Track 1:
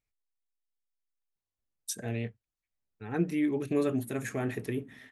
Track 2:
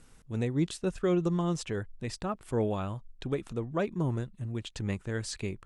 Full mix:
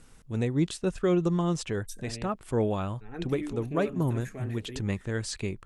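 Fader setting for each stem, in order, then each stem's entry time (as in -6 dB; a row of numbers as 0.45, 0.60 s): -8.0, +2.5 dB; 0.00, 0.00 s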